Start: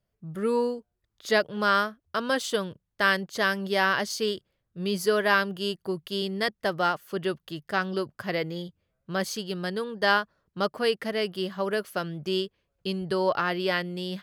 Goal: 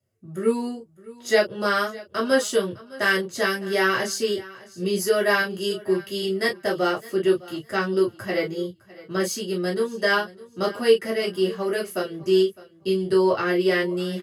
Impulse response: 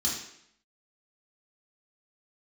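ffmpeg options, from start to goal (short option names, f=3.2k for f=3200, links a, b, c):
-filter_complex "[0:a]aecho=1:1:608|1216:0.1|0.019[a];[1:a]atrim=start_sample=2205,atrim=end_sample=3528,asetrate=70560,aresample=44100[b];[a][b]afir=irnorm=-1:irlink=0"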